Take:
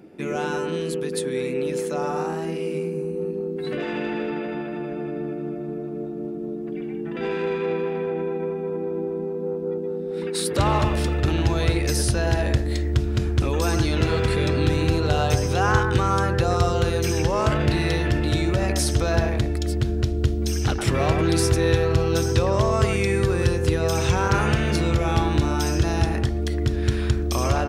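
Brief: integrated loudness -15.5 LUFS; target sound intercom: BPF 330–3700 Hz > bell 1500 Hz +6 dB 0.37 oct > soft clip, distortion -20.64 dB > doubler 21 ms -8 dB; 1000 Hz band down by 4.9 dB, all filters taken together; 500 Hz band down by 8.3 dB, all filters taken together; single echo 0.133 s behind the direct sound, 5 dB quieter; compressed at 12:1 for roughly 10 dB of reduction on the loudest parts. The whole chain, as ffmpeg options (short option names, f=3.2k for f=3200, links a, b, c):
-filter_complex "[0:a]equalizer=f=500:t=o:g=-8,equalizer=f=1k:t=o:g=-6,acompressor=threshold=-26dB:ratio=12,highpass=330,lowpass=3.7k,equalizer=f=1.5k:t=o:w=0.37:g=6,aecho=1:1:133:0.562,asoftclip=threshold=-25.5dB,asplit=2[a][b];[b]adelay=21,volume=-8dB[c];[a][c]amix=inputs=2:normalize=0,volume=20dB"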